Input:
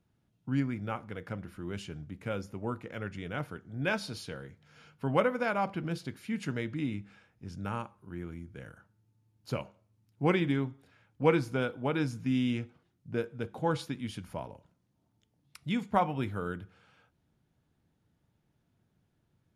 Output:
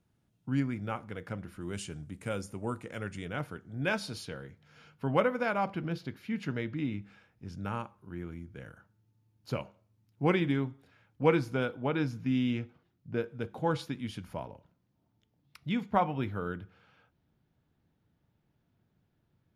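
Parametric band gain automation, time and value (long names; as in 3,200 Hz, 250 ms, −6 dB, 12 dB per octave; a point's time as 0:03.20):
parametric band 8,600 Hz 0.79 octaves
+2.5 dB
from 0:01.61 +13.5 dB
from 0:03.25 +1.5 dB
from 0:04.25 −4.5 dB
from 0:05.85 −14 dB
from 0:07.02 −4.5 dB
from 0:11.77 −12.5 dB
from 0:13.28 −4.5 dB
from 0:14.44 −13 dB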